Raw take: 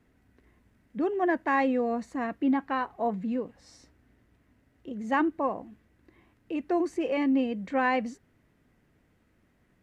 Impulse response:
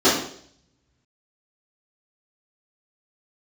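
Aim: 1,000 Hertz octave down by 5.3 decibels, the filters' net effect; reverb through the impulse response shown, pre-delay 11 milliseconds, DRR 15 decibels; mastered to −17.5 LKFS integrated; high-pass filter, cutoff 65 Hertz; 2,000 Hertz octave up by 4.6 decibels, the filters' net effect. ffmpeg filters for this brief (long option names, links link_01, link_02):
-filter_complex "[0:a]highpass=65,equalizer=frequency=1000:width_type=o:gain=-9,equalizer=frequency=2000:width_type=o:gain=8.5,asplit=2[link_01][link_02];[1:a]atrim=start_sample=2205,adelay=11[link_03];[link_02][link_03]afir=irnorm=-1:irlink=0,volume=-37.5dB[link_04];[link_01][link_04]amix=inputs=2:normalize=0,volume=11.5dB"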